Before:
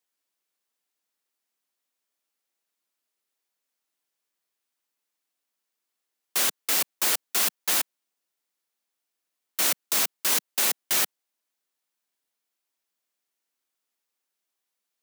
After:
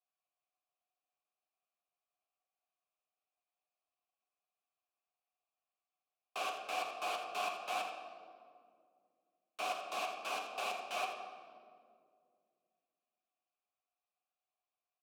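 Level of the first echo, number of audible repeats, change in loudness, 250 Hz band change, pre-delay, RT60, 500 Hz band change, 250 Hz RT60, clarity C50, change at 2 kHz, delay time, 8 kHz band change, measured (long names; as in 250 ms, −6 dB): −10.0 dB, 1, −16.5 dB, −14.5 dB, 10 ms, 2.2 s, −3.0 dB, 3.0 s, 4.0 dB, −10.5 dB, 83 ms, −26.0 dB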